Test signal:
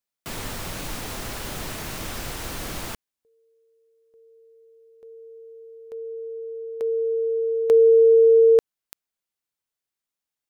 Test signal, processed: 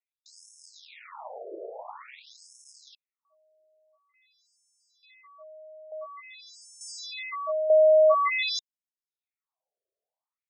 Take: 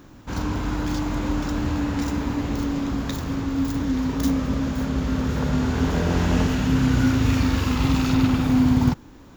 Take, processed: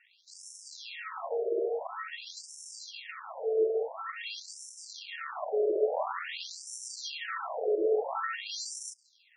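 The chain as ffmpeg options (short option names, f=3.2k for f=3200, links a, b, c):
-af "acrusher=samples=31:mix=1:aa=0.000001,afreqshift=170,afftfilt=real='re*between(b*sr/1024,480*pow(7500/480,0.5+0.5*sin(2*PI*0.48*pts/sr))/1.41,480*pow(7500/480,0.5+0.5*sin(2*PI*0.48*pts/sr))*1.41)':imag='im*between(b*sr/1024,480*pow(7500/480,0.5+0.5*sin(2*PI*0.48*pts/sr))/1.41,480*pow(7500/480,0.5+0.5*sin(2*PI*0.48*pts/sr))*1.41)':win_size=1024:overlap=0.75,volume=-2dB"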